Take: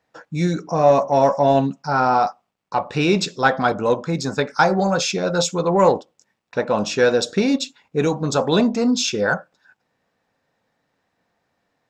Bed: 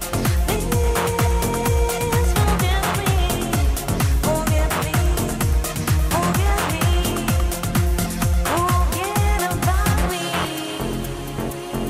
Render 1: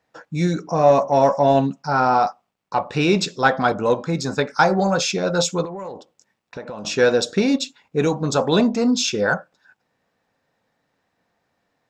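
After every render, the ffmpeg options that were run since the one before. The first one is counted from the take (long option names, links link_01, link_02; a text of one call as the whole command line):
ffmpeg -i in.wav -filter_complex "[0:a]asettb=1/sr,asplit=3[link_01][link_02][link_03];[link_01]atrim=end=3.794[link_04];[link_02]atrim=start=3.79:end=4.35,asetpts=PTS-STARTPTS,afade=type=in:duration=0.004:curve=qsin,afade=type=out:start_time=0.556:duration=0.004:curve=qsin,bandreject=frequency=270.4:width_type=h:width=4,bandreject=frequency=540.8:width_type=h:width=4,bandreject=frequency=811.2:width_type=h:width=4,bandreject=frequency=1081.6:width_type=h:width=4,bandreject=frequency=1352:width_type=h:width=4,bandreject=frequency=1622.4:width_type=h:width=4,bandreject=frequency=1892.8:width_type=h:width=4,bandreject=frequency=2163.2:width_type=h:width=4,bandreject=frequency=2433.6:width_type=h:width=4,bandreject=frequency=2704:width_type=h:width=4,bandreject=frequency=2974.4:width_type=h:width=4,bandreject=frequency=3244.8:width_type=h:width=4,bandreject=frequency=3515.2:width_type=h:width=4,bandreject=frequency=3785.6:width_type=h:width=4,bandreject=frequency=4056:width_type=h:width=4,bandreject=frequency=4326.4:width_type=h:width=4,bandreject=frequency=4596.8:width_type=h:width=4,bandreject=frequency=4867.2:width_type=h:width=4,bandreject=frequency=5137.6:width_type=h:width=4,bandreject=frequency=5408:width_type=h:width=4[link_05];[link_03]atrim=start=4.346[link_06];[link_04][link_05]acrossfade=duration=0.004:curve1=hsin:curve2=qsin[link_07];[link_07][link_06]acrossfade=duration=0.004:curve1=qsin:curve2=hsin,asettb=1/sr,asplit=3[link_08][link_09][link_10];[link_08]atrim=end=5.654[link_11];[link_09]atrim=start=5.65:end=6.85,asetpts=PTS-STARTPTS,afade=type=in:duration=0.004:curve=qsin,afade=type=out:start_time=1.196:duration=0.004:curve=qsin,acompressor=threshold=-29dB:ratio=8:attack=3.2:release=140:knee=1:detection=peak[link_12];[link_10]atrim=start=6.846[link_13];[link_11][link_12]acrossfade=duration=0.004:curve1=hsin:curve2=qsin[link_14];[link_14][link_13]acrossfade=duration=0.004:curve1=qsin:curve2=hsin" out.wav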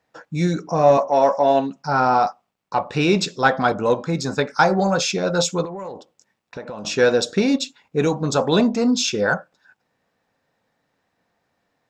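ffmpeg -i in.wav -filter_complex "[0:a]asettb=1/sr,asplit=3[link_01][link_02][link_03];[link_01]atrim=end=0.974[link_04];[link_02]atrim=start=0.97:end=1.76,asetpts=PTS-STARTPTS,afade=type=in:duration=0.004:curve=qsin,afade=type=out:start_time=0.786:duration=0.004:curve=qsin,highpass=290,lowpass=6400[link_05];[link_03]atrim=start=1.756[link_06];[link_04][link_05]acrossfade=duration=0.004:curve1=hsin:curve2=qsin[link_07];[link_07][link_06]acrossfade=duration=0.004:curve1=qsin:curve2=hsin" out.wav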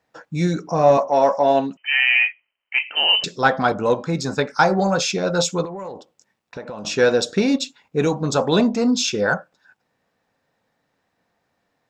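ffmpeg -i in.wav -filter_complex "[0:a]asettb=1/sr,asplit=3[link_01][link_02][link_03];[link_01]atrim=end=1.774[link_04];[link_02]atrim=start=1.77:end=3.24,asetpts=PTS-STARTPTS,afade=type=in:duration=0.004:curve=qsin,afade=type=out:start_time=1.466:duration=0.004:curve=qsin,lowpass=frequency=2700:width_type=q:width=0.5098,lowpass=frequency=2700:width_type=q:width=0.6013,lowpass=frequency=2700:width_type=q:width=0.9,lowpass=frequency=2700:width_type=q:width=2.563,afreqshift=-3200[link_05];[link_03]atrim=start=3.236[link_06];[link_04][link_05]acrossfade=duration=0.004:curve1=hsin:curve2=qsin[link_07];[link_07][link_06]acrossfade=duration=0.004:curve1=qsin:curve2=hsin" out.wav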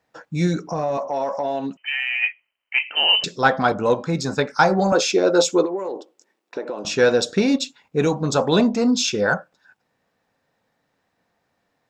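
ffmpeg -i in.wav -filter_complex "[0:a]asplit=3[link_01][link_02][link_03];[link_01]afade=type=out:start_time=0.66:duration=0.02[link_04];[link_02]acompressor=threshold=-21dB:ratio=4:attack=3.2:release=140:knee=1:detection=peak,afade=type=in:start_time=0.66:duration=0.02,afade=type=out:start_time=2.22:duration=0.02[link_05];[link_03]afade=type=in:start_time=2.22:duration=0.02[link_06];[link_04][link_05][link_06]amix=inputs=3:normalize=0,asettb=1/sr,asplit=3[link_07][link_08][link_09];[link_07]atrim=end=4.924[link_10];[link_08]atrim=start=4.92:end=6.85,asetpts=PTS-STARTPTS,afade=type=in:duration=0.004:curve=qsin,afade=type=out:start_time=1.926:duration=0.004:curve=qsin,highpass=frequency=340:width_type=q:width=3.2[link_11];[link_09]atrim=start=6.846[link_12];[link_10][link_11]acrossfade=duration=0.004:curve1=hsin:curve2=qsin[link_13];[link_13][link_12]acrossfade=duration=0.004:curve1=qsin:curve2=hsin" out.wav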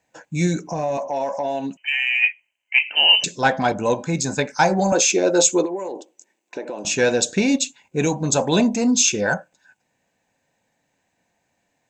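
ffmpeg -i in.wav -af "superequalizer=7b=0.708:10b=0.398:12b=1.58:15b=3.16" out.wav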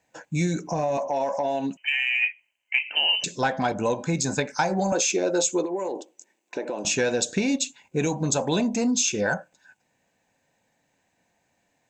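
ffmpeg -i in.wav -af "acompressor=threshold=-21dB:ratio=4" out.wav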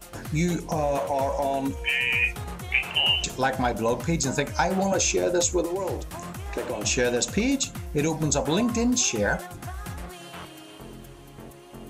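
ffmpeg -i in.wav -i bed.wav -filter_complex "[1:a]volume=-17.5dB[link_01];[0:a][link_01]amix=inputs=2:normalize=0" out.wav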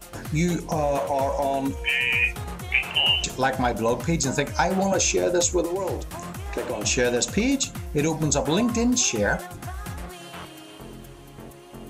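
ffmpeg -i in.wav -af "volume=1.5dB" out.wav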